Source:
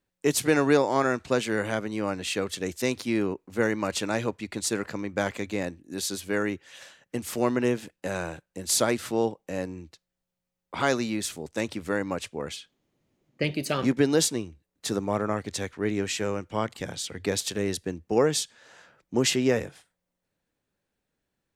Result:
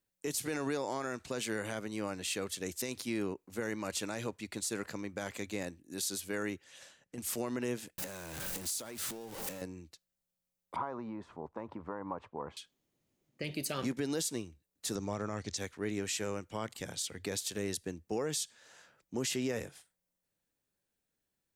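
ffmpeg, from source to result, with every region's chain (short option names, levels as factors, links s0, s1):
-filter_complex "[0:a]asettb=1/sr,asplit=3[s0][s1][s2];[s0]atrim=end=6.644[s3];[s1]atrim=start=6.64:end=7.18,asetpts=PTS-STARTPTS,afade=t=in:d=0.004:c=qsin,afade=t=out:st=0.536:d=0.004:c=qsin,lowpass=11000,acompressor=threshold=0.0112:ratio=2.5:attack=3.2:release=140:knee=1:detection=peak,tiltshelf=f=690:g=3.5[s4];[s2]atrim=start=7.176[s5];[s3][s4]acrossfade=d=0.004:c1=hsin:c2=qsin[s6];[s6][s5]acrossfade=d=0.004:c1=qsin:c2=hsin,asettb=1/sr,asplit=3[s7][s8][s9];[s7]atrim=end=7.984[s10];[s8]atrim=start=7.98:end=9.62,asetpts=PTS-STARTPTS,afade=t=in:d=0.004:c=qsin,afade=t=out:st=1.636:d=0.004:c=qsin,aeval=exprs='val(0)+0.5*0.0355*sgn(val(0))':c=same,acompressor=threshold=0.0224:ratio=12:attack=3.2:release=140:knee=1:detection=peak[s11];[s9]atrim=start=9.616[s12];[s10][s11]acrossfade=d=0.004:c1=hsin:c2=qsin[s13];[s13][s12]acrossfade=d=0.004:c1=qsin:c2=hsin,asettb=1/sr,asplit=3[s14][s15][s16];[s14]atrim=end=10.764[s17];[s15]atrim=start=10.76:end=12.57,asetpts=PTS-STARTPTS,afade=t=in:d=0.004:c=qsin,afade=t=out:st=1.806:d=0.004:c=qsin,acompressor=threshold=0.0355:ratio=10:attack=3.2:release=140:knee=1:detection=peak,lowpass=f=1000:t=q:w=4.6[s18];[s16]atrim=start=12.566[s19];[s17][s18]acrossfade=d=0.004:c1=hsin:c2=qsin[s20];[s20][s19]acrossfade=d=0.004:c1=qsin:c2=hsin,asettb=1/sr,asplit=3[s21][s22][s23];[s21]atrim=end=14.954[s24];[s22]atrim=start=14.95:end=15.57,asetpts=PTS-STARTPTS,afade=t=in:d=0.004:c=qsin,afade=t=out:st=0.616:d=0.004:c=qsin,lowpass=f=6000:t=q:w=2.4,lowshelf=f=97:g=10.5[s25];[s23]atrim=start=15.566[s26];[s24][s25]acrossfade=d=0.004:c1=hsin:c2=qsin[s27];[s27][s26]acrossfade=d=0.004:c1=qsin:c2=hsin,highshelf=f=5200:g=11.5,alimiter=limit=0.141:level=0:latency=1:release=58,volume=0.398"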